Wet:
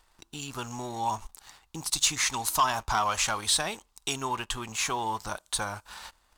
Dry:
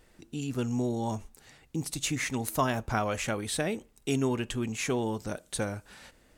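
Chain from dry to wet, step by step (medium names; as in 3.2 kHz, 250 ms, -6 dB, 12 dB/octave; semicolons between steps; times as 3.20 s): compression 1.5:1, threshold -37 dBFS, peak gain reduction 6 dB; graphic EQ 125/250/500/1000/2000/4000 Hz -10/-11/-11/+12/-6/+4 dB; waveshaping leveller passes 2; 1.89–4.13 s: peaking EQ 5.6 kHz +5 dB 1.8 oct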